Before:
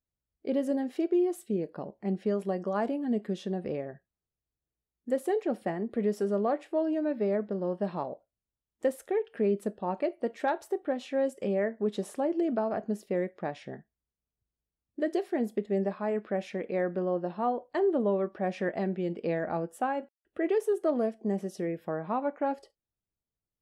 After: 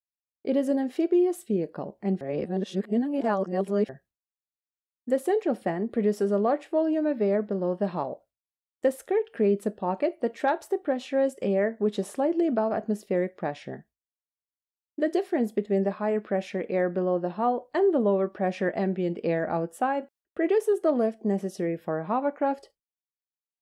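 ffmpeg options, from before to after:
-filter_complex "[0:a]asplit=3[a][b][c];[a]atrim=end=2.212[d];[b]atrim=start=2.208:end=3.892,asetpts=PTS-STARTPTS,areverse[e];[c]atrim=start=3.888[f];[d][e]acrossfade=d=0.004:c1=hsin:c2=hsin[g];[g][f]acrossfade=d=0.004:c1=hsin:c2=hsin,agate=range=-33dB:threshold=-54dB:ratio=3:detection=peak,volume=4dB"

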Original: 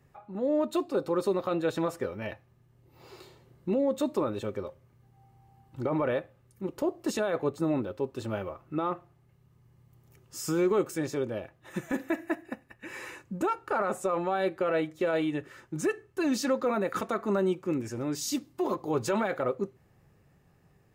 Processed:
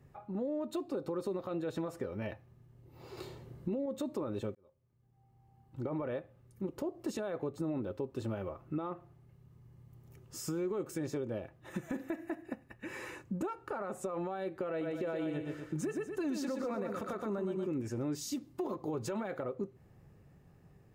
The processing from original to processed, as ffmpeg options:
-filter_complex "[0:a]asettb=1/sr,asplit=3[a][b][c];[a]atrim=end=3.174[d];[b]atrim=start=3.17:end=3.86,asetpts=PTS-STARTPTS,afade=t=in:d=0.004:c=qsin,afade=t=out:st=0.686:d=0.004:c=qsin,acontrast=30[e];[c]atrim=start=3.856[f];[d][e]acrossfade=d=0.004:c1=hsin:c2=qsin[g];[g][f]acrossfade=d=0.004:c1=qsin:c2=hsin,asettb=1/sr,asplit=3[h][i][j];[h]atrim=end=14.694[k];[i]atrim=start=14.69:end=17.68,asetpts=PTS-STARTPTS,afade=t=in:d=0.004:c=qsin,afade=t=out:st=2.986:d=0.004:c=qsin,aecho=1:1:120|240|360|480|600:0.501|0.19|0.0724|0.0275|0.0105,atrim=end_sample=131859[l];[j]atrim=start=17.676[m];[k][l]acrossfade=d=0.004:c1=hsin:c2=qsin[n];[n][m]acrossfade=d=0.004:c1=qsin:c2=hsin,asplit=2[o][p];[o]atrim=end=4.55,asetpts=PTS-STARTPTS,afade=t=out:st=4.546:d=0.004:c=hsin[q];[p]atrim=start=4.55,asetpts=PTS-STARTPTS,afade=t=in:d=2.31[r];[q][r]concat=n=2:v=0:a=1,alimiter=limit=-24dB:level=0:latency=1:release=88,acompressor=threshold=-39dB:ratio=2,tiltshelf=f=680:g=3.5"

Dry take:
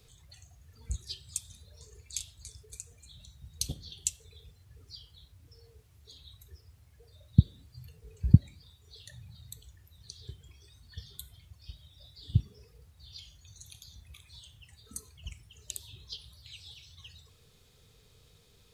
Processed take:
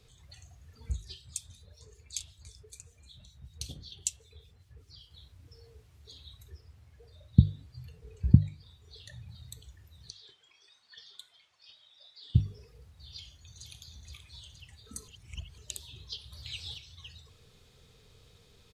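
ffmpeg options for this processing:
-filter_complex "[0:a]asettb=1/sr,asplit=3[a][b][c];[a]atrim=end=0.914[d];[b]atrim=start=0.91:end=5.11,asetpts=PTS-STARTPTS,afade=t=in:d=0.004:c=qsin,afade=t=out:st=4.196:d=0.004:c=qsin,acrossover=split=2400[e][f];[e]aeval=exprs='val(0)*(1-0.7/2+0.7/2*cos(2*PI*5.2*n/s))':c=same[g];[f]aeval=exprs='val(0)*(1-0.7/2-0.7/2*cos(2*PI*5.2*n/s))':c=same[h];[g][h]amix=inputs=2:normalize=0[i];[c]atrim=start=5.106[j];[d][i]acrossfade=d=0.004:c1=hsin:c2=qsin[k];[k][j]acrossfade=d=0.004:c1=qsin:c2=hsin,asettb=1/sr,asplit=3[l][m][n];[l]atrim=end=6.504[o];[m]atrim=start=6.5:end=9.29,asetpts=PTS-STARTPTS,afade=t=in:d=0.004:c=qsin,afade=t=out:st=2.786:d=0.004:c=qsin,highshelf=f=5.5k:g=-4[p];[n]atrim=start=9.286[q];[o][p]acrossfade=d=0.004:c1=hsin:c2=qsin[r];[r][q]acrossfade=d=0.004:c1=qsin:c2=hsin,asettb=1/sr,asplit=3[s][t][u];[s]atrim=end=10.104[v];[t]atrim=start=10.1:end=12.35,asetpts=PTS-STARTPTS,afade=t=in:d=0.004:c=qsin,afade=t=out:st=2.246:d=0.004:c=qsin,highpass=750,lowpass=6k[w];[u]atrim=start=12.346[x];[v][w]acrossfade=d=0.004:c1=hsin:c2=qsin[y];[y][x]acrossfade=d=0.004:c1=qsin:c2=hsin,asplit=2[z][aa];[aa]afade=t=in:st=13.1:d=0.01,afade=t=out:st=13.68:d=0.01,aecho=0:1:470|940|1410|1880|2350|2820|3290|3760|4230:0.421697|0.274103|0.178167|0.115808|0.0752755|0.048929|0.0318039|0.0206725|0.0134371[ab];[z][ab]amix=inputs=2:normalize=0,asettb=1/sr,asplit=3[ac][ad][ae];[ac]atrim=end=16.324[af];[ad]atrim=start=16.32:end=16.78,asetpts=PTS-STARTPTS,afade=t=in:d=0.004:c=qsin,afade=t=out:st=0.456:d=0.004:c=qsin,acontrast=52[ag];[ae]atrim=start=16.776[ah];[af][ag]acrossfade=d=0.004:c1=hsin:c2=qsin[ai];[ai][ah]acrossfade=d=0.004:c1=qsin:c2=hsin,asplit=3[aj][ak][al];[aj]atrim=end=15.082[am];[ak]atrim=start=15.078:end=15.582,asetpts=PTS-STARTPTS,areverse[an];[al]atrim=start=15.578[ao];[am][an]acrossfade=d=0.004:c1=hsin:c2=hsin[ap];[ap][ao]acrossfade=d=0.004:c1=hsin:c2=hsin,dynaudnorm=f=130:g=3:m=3dB,highshelf=f=9.5k:g=-11,bandreject=f=50:t=h:w=6,bandreject=f=100:t=h:w=6,bandreject=f=150:t=h:w=6"

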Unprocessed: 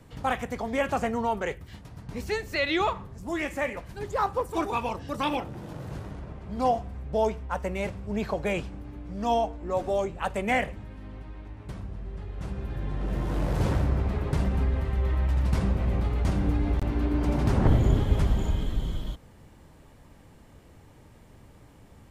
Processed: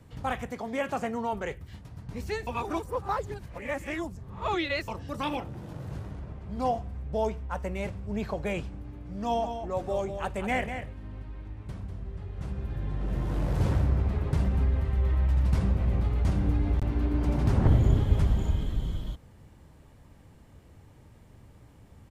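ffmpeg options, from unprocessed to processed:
-filter_complex "[0:a]asettb=1/sr,asplit=3[a][b][c];[a]atrim=end=0.494[d];[b]atrim=start=0.49:end=1.33,asetpts=PTS-STARTPTS,afade=t=in:d=0.004:c=qsin,afade=t=out:st=0.836:d=0.004:c=qsin,highpass=150[e];[c]atrim=start=1.326[f];[d][e]acrossfade=d=0.004:c1=hsin:c2=qsin[g];[g][f]acrossfade=d=0.004:c1=qsin:c2=hsin,asplit=3[h][i][j];[h]afade=t=out:st=8.95:d=0.02[k];[i]aecho=1:1:196:0.376,afade=t=in:st=8.95:d=0.02,afade=t=out:st=12.51:d=0.02[l];[j]afade=t=in:st=12.51:d=0.02[m];[k][l][m]amix=inputs=3:normalize=0,asplit=3[n][o][p];[n]atrim=end=2.472[q];[o]atrim=start=2.468:end=4.882,asetpts=PTS-STARTPTS,areverse[r];[p]atrim=start=4.878[s];[q][r]acrossfade=d=0.004:c1=hsin:c2=hsin[t];[t][s]acrossfade=d=0.004:c1=hsin:c2=hsin,equalizer=f=87:w=0.69:g=5.5,volume=-4dB"

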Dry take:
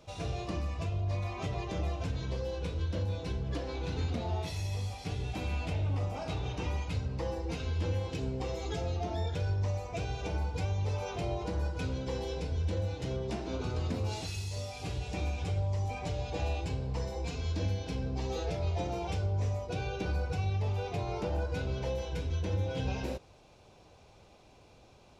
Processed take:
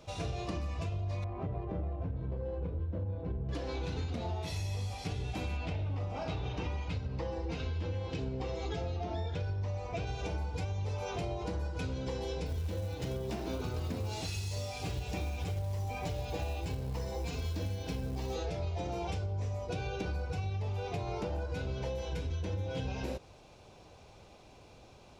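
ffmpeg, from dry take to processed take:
-filter_complex "[0:a]asettb=1/sr,asplit=3[a][b][c];[a]atrim=end=1.244[d];[b]atrim=start=1.24:end=3.49,asetpts=PTS-STARTPTS,afade=t=in:d=0.004:c=qsin,afade=t=out:st=2.246:d=0.004:c=qsin,adynamicsmooth=sensitivity=1:basefreq=790[e];[c]atrim=start=3.486[f];[d][e]acrossfade=d=0.004:c1=hsin:c2=qsin[g];[g][f]acrossfade=d=0.004:c1=qsin:c2=hsin,asettb=1/sr,asplit=3[h][i][j];[h]atrim=end=5.574[k];[i]atrim=start=5.57:end=10.07,asetpts=PTS-STARTPTS,afade=t=in:d=0.004:c=qsin,afade=t=out:st=4.496:d=0.004:c=qsin,lowpass=5.1k[l];[j]atrim=start=10.066[m];[k][l]acrossfade=d=0.004:c1=hsin:c2=qsin[n];[n][m]acrossfade=d=0.004:c1=qsin:c2=hsin,asettb=1/sr,asplit=3[o][p][q];[o]atrim=end=12.464[r];[p]atrim=start=12.46:end=18.34,asetpts=PTS-STARTPTS,afade=t=in:d=0.004:c=qsin,afade=t=out:st=5.876:d=0.004:c=qsin,acrusher=bits=6:mode=log:mix=0:aa=0.000001[s];[q]atrim=start=18.336[t];[r][s]acrossfade=d=0.004:c1=hsin:c2=qsin[u];[u][t]acrossfade=d=0.004:c1=qsin:c2=hsin,acompressor=threshold=-35dB:ratio=6,volume=2.5dB"

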